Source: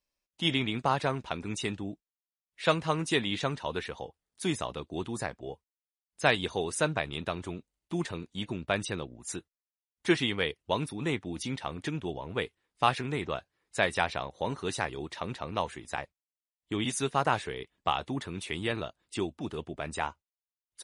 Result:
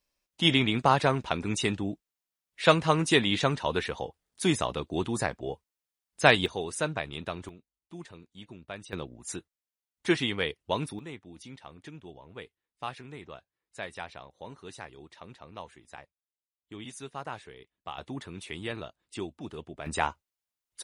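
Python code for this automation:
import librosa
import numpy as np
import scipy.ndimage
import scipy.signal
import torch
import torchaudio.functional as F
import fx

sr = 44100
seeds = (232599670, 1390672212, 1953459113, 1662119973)

y = fx.gain(x, sr, db=fx.steps((0.0, 5.0), (6.46, -2.0), (7.49, -11.5), (8.93, 0.0), (10.99, -11.5), (17.98, -4.0), (19.86, 4.5)))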